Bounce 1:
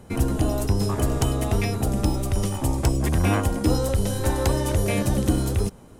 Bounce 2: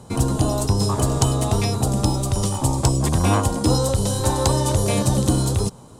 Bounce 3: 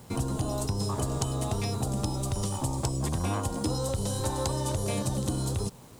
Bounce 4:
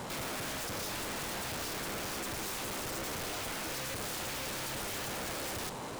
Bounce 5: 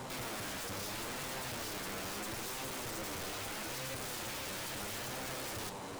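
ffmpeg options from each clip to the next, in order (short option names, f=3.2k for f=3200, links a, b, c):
-af "equalizer=f=125:t=o:w=1:g=10,equalizer=f=250:t=o:w=1:g=3,equalizer=f=500:t=o:w=1:g=4,equalizer=f=1k:t=o:w=1:g=11,equalizer=f=2k:t=o:w=1:g=-4,equalizer=f=4k:t=o:w=1:g=10,equalizer=f=8k:t=o:w=1:g=12,volume=-4dB"
-af "acrusher=bits=7:mix=0:aa=0.000001,acompressor=threshold=-19dB:ratio=6,volume=-6.5dB"
-filter_complex "[0:a]volume=31.5dB,asoftclip=hard,volume=-31.5dB,asplit=2[a][b];[b]highpass=f=720:p=1,volume=29dB,asoftclip=type=tanh:threshold=-31dB[c];[a][c]amix=inputs=2:normalize=0,lowpass=f=2.8k:p=1,volume=-6dB,aeval=exprs='(mod(53.1*val(0)+1,2)-1)/53.1':c=same"
-af "flanger=delay=7.6:depth=3:regen=53:speed=0.76:shape=sinusoidal,volume=1dB"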